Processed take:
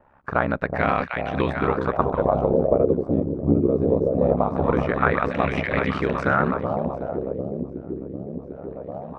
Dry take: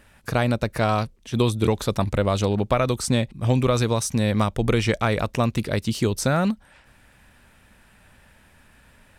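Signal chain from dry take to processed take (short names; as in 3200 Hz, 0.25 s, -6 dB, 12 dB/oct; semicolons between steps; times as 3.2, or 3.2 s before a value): low shelf 140 Hz -9 dB; echo with dull and thin repeats by turns 0.374 s, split 800 Hz, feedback 82%, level -4 dB; ring modulator 34 Hz; LFO low-pass sine 0.22 Hz 350–2100 Hz; gain +2 dB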